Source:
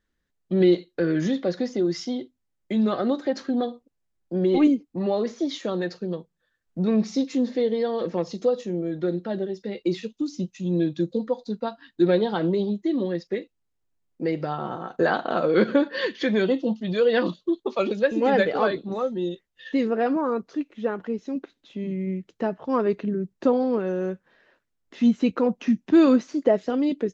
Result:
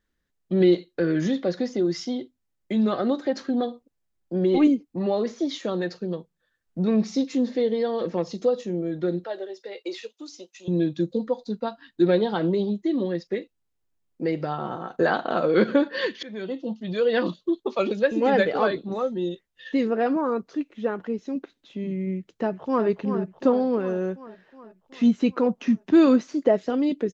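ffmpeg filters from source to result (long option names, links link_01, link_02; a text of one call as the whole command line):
ffmpeg -i in.wav -filter_complex "[0:a]asettb=1/sr,asplit=3[link_01][link_02][link_03];[link_01]atrim=end=9.244[link_04];[link_02]atrim=start=9.24:end=10.68,asetpts=PTS-STARTPTS,afade=type=in:duration=0.004:curve=qsin,afade=type=out:start_time=1.436:duration=0.004:curve=qsin,highpass=frequency=440:width=0.5412,highpass=frequency=440:width=1.3066[link_05];[link_03]atrim=start=10.676[link_06];[link_04][link_05]acrossfade=duration=0.004:curve1=hsin:curve2=qsin[link_07];[link_07][link_06]acrossfade=duration=0.004:curve1=qsin:curve2=hsin,asplit=2[link_08][link_09];[link_09]afade=type=in:start_time=22.16:duration=0.01,afade=type=out:start_time=22.86:duration=0.01,aecho=0:1:370|740|1110|1480|1850|2220|2590|2960|3330:0.354813|0.230629|0.149909|0.0974406|0.0633364|0.0411687|0.0267596|0.0173938|0.0113059[link_10];[link_08][link_10]amix=inputs=2:normalize=0,asplit=2[link_11][link_12];[link_11]atrim=end=16.23,asetpts=PTS-STARTPTS,afade=type=out:start_time=16.226:duration=0.004:curve=hsin:silence=0.1[link_13];[link_12]atrim=start=16.23,asetpts=PTS-STARTPTS,afade=type=in:duration=1.44:curve=qsin:silence=0.1[link_14];[link_13][link_14]concat=n=2:v=0:a=1" out.wav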